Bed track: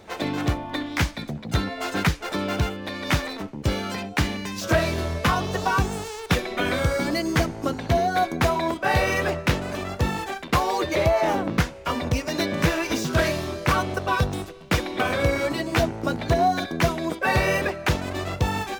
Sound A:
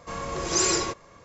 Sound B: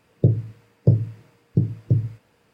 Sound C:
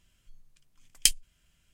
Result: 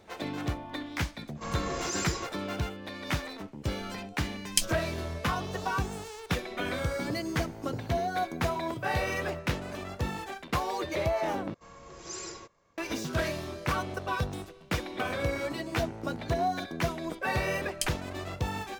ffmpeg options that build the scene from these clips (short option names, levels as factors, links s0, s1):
-filter_complex "[1:a]asplit=2[s0][s1];[3:a]asplit=2[s2][s3];[0:a]volume=0.376[s4];[s0]alimiter=limit=0.0841:level=0:latency=1:release=221[s5];[2:a]aemphasis=mode=production:type=riaa[s6];[s4]asplit=2[s7][s8];[s7]atrim=end=11.544[s9];[s1]atrim=end=1.24,asetpts=PTS-STARTPTS,volume=0.141[s10];[s8]atrim=start=12.776[s11];[s5]atrim=end=1.24,asetpts=PTS-STARTPTS,volume=0.708,afade=t=in:d=0.05,afade=t=out:st=1.19:d=0.05,adelay=1340[s12];[s2]atrim=end=1.73,asetpts=PTS-STARTPTS,volume=0.631,afade=t=in:d=0.004:c=hsin,afade=t=out:st=1.726:d=0.004:c=hsin,adelay=3520[s13];[s6]atrim=end=2.53,asetpts=PTS-STARTPTS,volume=0.224,afade=t=in:d=0.004:c=hsin,afade=t=out:st=2.526:d=0.004:c=hsin,adelay=6860[s14];[s3]atrim=end=1.73,asetpts=PTS-STARTPTS,volume=0.282,afade=t=in:d=0.004:c=hsin,afade=t=out:st=1.726:d=0.004:c=hsin,adelay=16760[s15];[s9][s10]acrossfade=d=0.004:c1=hsin:c2=hsin[s16];[s16][s11]acrossfade=d=0.004:c1=hsin:c2=hsin[s17];[s17][s12][s13][s14][s15]amix=inputs=5:normalize=0"